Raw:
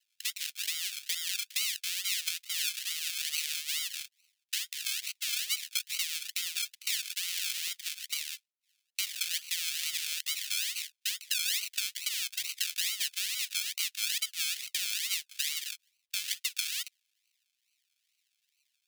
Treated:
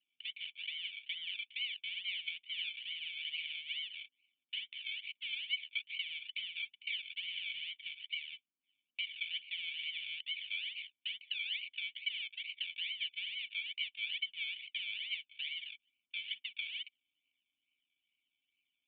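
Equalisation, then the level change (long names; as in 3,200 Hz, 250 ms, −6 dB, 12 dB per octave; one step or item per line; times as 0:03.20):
formant resonators in series i
+12.5 dB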